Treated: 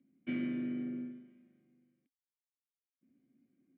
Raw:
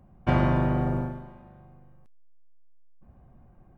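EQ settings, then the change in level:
formant filter i
band-pass filter 190–3,800 Hz
0.0 dB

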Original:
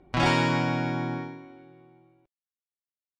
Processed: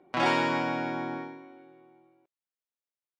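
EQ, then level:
high-pass filter 290 Hz 12 dB per octave
high-shelf EQ 3,600 Hz −7.5 dB
0.0 dB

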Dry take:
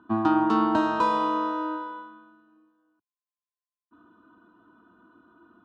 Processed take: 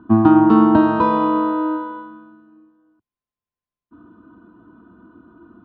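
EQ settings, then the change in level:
high-frequency loss of the air 270 metres
low-shelf EQ 200 Hz +5 dB
low-shelf EQ 430 Hz +8.5 dB
+5.0 dB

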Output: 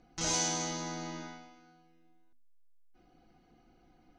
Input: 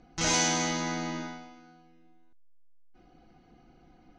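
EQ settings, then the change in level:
dynamic equaliser 2,100 Hz, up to −6 dB, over −43 dBFS, Q 1.1
high-shelf EQ 5,300 Hz +4.5 dB
mains-hum notches 50/100/150/200/250 Hz
−5.5 dB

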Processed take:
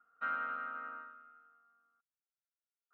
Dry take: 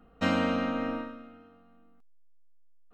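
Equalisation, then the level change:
resonant band-pass 1,400 Hz, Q 16
high-frequency loss of the air 140 metres
+7.0 dB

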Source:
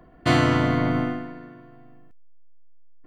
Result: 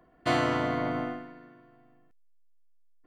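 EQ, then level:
low-shelf EQ 210 Hz −8.5 dB
dynamic equaliser 650 Hz, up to +5 dB, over −35 dBFS, Q 0.86
−7.0 dB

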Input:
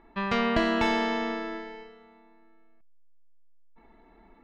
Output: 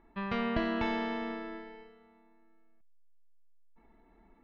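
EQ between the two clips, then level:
high-frequency loss of the air 220 metres
spectral tilt +1.5 dB per octave
low-shelf EQ 250 Hz +11 dB
−7.5 dB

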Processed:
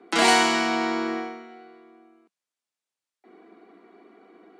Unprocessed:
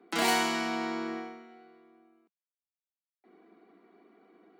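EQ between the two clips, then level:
high-pass filter 210 Hz
low-pass filter 9,800 Hz 24 dB per octave
+8.5 dB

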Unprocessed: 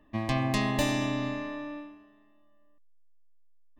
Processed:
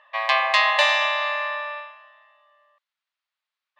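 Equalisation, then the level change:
linear-phase brick-wall high-pass 520 Hz
high-frequency loss of the air 93 metres
flat-topped bell 2,100 Hz +9.5 dB 2.5 octaves
+7.0 dB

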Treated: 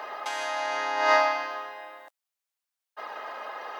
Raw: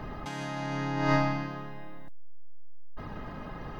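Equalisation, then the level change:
high-pass filter 550 Hz 24 dB per octave
+8.0 dB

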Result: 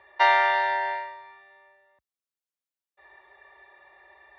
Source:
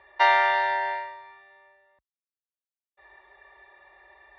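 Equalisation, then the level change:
high-pass filter 67 Hz
0.0 dB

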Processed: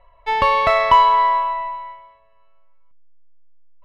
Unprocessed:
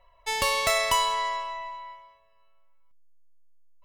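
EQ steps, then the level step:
dynamic equaliser 1,000 Hz, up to +7 dB, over −40 dBFS, Q 1.7
high-frequency loss of the air 390 metres
+8.5 dB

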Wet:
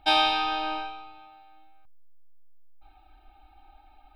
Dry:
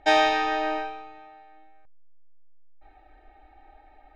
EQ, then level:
high-shelf EQ 2,800 Hz +7 dB
high-shelf EQ 6,300 Hz +6.5 dB
phaser with its sweep stopped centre 1,900 Hz, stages 6
0.0 dB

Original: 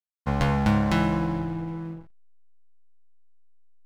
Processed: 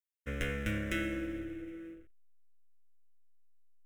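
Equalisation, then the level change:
low-shelf EQ 340 Hz −7.5 dB
phaser with its sweep stopped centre 410 Hz, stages 4
phaser with its sweep stopped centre 1,900 Hz, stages 4
0.0 dB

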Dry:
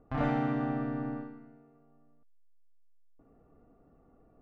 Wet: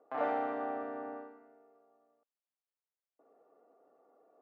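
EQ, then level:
high-pass filter 500 Hz 24 dB per octave
spectral tilt −4.5 dB per octave
0.0 dB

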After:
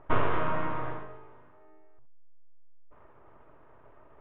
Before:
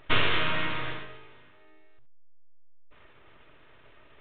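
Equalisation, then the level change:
low-pass with resonance 970 Hz, resonance Q 1.6
0.0 dB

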